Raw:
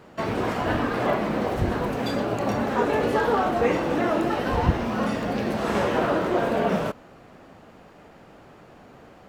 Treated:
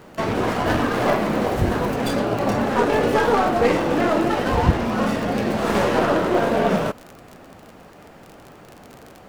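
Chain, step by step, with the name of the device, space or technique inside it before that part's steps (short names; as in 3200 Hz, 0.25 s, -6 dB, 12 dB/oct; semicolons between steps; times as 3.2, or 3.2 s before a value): record under a worn stylus (tracing distortion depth 0.1 ms; crackle 34/s -33 dBFS; pink noise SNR 39 dB); 0.66–1.96 high shelf 8200 Hz +5.5 dB; gain +4 dB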